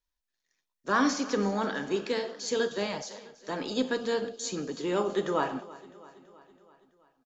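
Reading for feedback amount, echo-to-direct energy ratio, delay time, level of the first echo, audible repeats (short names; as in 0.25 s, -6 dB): 60%, -17.5 dB, 0.329 s, -19.5 dB, 4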